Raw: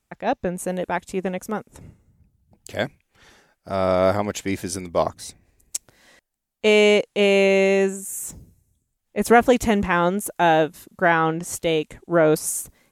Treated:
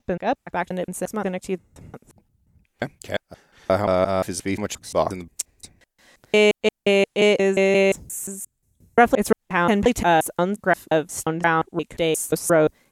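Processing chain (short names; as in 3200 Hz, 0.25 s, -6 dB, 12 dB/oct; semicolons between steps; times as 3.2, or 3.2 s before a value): slices in reverse order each 0.176 s, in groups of 3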